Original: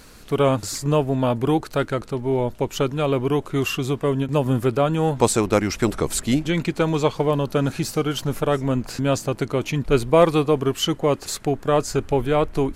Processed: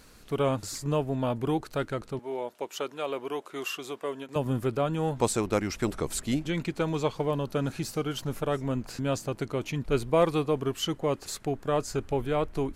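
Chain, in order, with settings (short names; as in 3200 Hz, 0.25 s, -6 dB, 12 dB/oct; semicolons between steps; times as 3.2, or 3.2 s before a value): 2.19–4.36 HPF 440 Hz 12 dB/oct; gain -8 dB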